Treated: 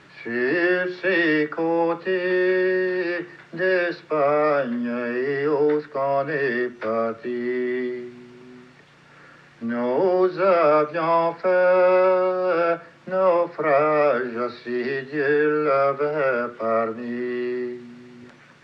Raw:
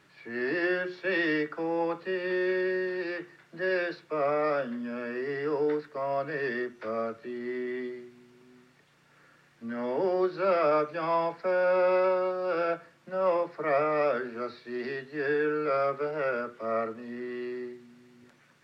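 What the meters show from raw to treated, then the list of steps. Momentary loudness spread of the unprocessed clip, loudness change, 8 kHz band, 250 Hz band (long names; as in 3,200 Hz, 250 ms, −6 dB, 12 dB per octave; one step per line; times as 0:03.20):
11 LU, +8.0 dB, can't be measured, +8.5 dB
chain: in parallel at −0.5 dB: downward compressor, threshold −40 dBFS, peak gain reduction 17 dB
on the sum: high-frequency loss of the air 70 metres
level +6.5 dB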